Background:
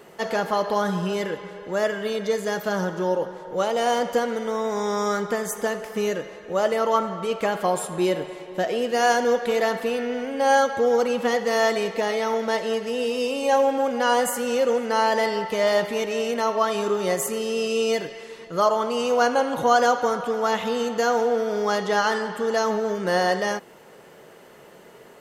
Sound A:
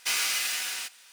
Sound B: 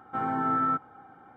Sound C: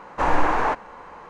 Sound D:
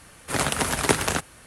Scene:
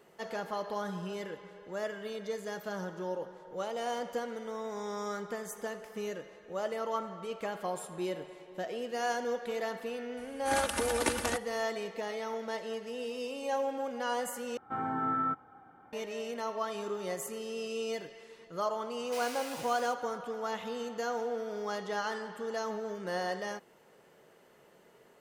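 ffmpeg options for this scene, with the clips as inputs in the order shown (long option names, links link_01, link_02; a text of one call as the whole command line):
ffmpeg -i bed.wav -i cue0.wav -i cue1.wav -i cue2.wav -i cue3.wav -filter_complex "[0:a]volume=-13dB[link_01];[4:a]aecho=1:1:3.4:0.97[link_02];[link_01]asplit=2[link_03][link_04];[link_03]atrim=end=14.574[link_05];[2:a]atrim=end=1.36,asetpts=PTS-STARTPTS,volume=-5dB[link_06];[link_04]atrim=start=15.926[link_07];[link_02]atrim=end=1.46,asetpts=PTS-STARTPTS,volume=-12.5dB,afade=type=in:duration=0.004:curve=hsin,afade=type=out:start_time=1.456:duration=0.004:curve=hsin,adelay=10170[link_08];[1:a]atrim=end=1.12,asetpts=PTS-STARTPTS,volume=-17dB,afade=type=in:duration=0.004:curve=hsin,afade=type=out:start_time=1.116:duration=0.004:curve=hsin,adelay=19060[link_09];[link_05][link_06]acrossfade=duration=0.004:curve1=hsin:curve2=hsin[link_10];[link_10][link_07]acrossfade=duration=0.004:curve1=hsin:curve2=hsin[link_11];[link_11][link_08][link_09]amix=inputs=3:normalize=0" out.wav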